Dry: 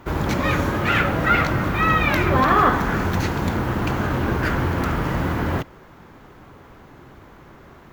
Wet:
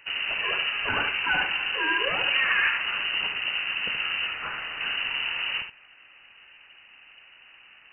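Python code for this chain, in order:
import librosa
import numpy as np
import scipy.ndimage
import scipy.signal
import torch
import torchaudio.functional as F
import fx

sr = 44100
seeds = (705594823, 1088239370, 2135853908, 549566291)

y = fx.low_shelf(x, sr, hz=420.0, db=-10.5, at=(4.28, 4.81))
y = fx.freq_invert(y, sr, carrier_hz=2900)
y = y + 10.0 ** (-8.0 / 20.0) * np.pad(y, (int(74 * sr / 1000.0), 0))[:len(y)]
y = F.gain(torch.from_numpy(y), -8.0).numpy()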